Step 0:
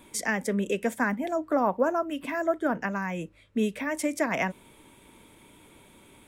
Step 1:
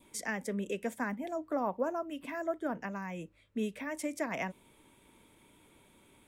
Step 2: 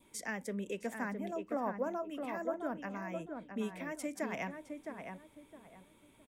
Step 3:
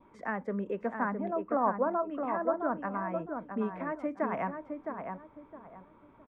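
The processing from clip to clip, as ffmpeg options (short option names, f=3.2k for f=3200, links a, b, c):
-af "adynamicequalizer=threshold=0.00447:dfrequency=1500:dqfactor=2.7:tfrequency=1500:tqfactor=2.7:attack=5:release=100:ratio=0.375:range=2.5:mode=cutabove:tftype=bell,volume=-8dB"
-filter_complex "[0:a]asplit=2[a][b];[b]adelay=663,lowpass=f=1.6k:p=1,volume=-5dB,asplit=2[c][d];[d]adelay=663,lowpass=f=1.6k:p=1,volume=0.29,asplit=2[e][f];[f]adelay=663,lowpass=f=1.6k:p=1,volume=0.29,asplit=2[g][h];[h]adelay=663,lowpass=f=1.6k:p=1,volume=0.29[i];[a][c][e][g][i]amix=inputs=5:normalize=0,volume=-3.5dB"
-af "lowpass=f=1.2k:t=q:w=2.4,volume=4.5dB"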